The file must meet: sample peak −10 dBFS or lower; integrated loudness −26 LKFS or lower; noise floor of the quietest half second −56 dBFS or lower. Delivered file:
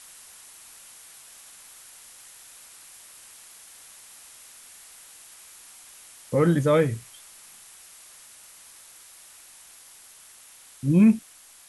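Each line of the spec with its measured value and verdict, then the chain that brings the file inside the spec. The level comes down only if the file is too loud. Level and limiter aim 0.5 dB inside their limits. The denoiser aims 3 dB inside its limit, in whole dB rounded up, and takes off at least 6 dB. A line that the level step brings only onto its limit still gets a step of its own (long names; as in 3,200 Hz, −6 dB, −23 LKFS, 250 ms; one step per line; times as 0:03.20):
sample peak −8.5 dBFS: out of spec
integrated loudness −22.0 LKFS: out of spec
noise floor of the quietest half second −50 dBFS: out of spec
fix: broadband denoise 6 dB, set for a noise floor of −50 dBFS
level −4.5 dB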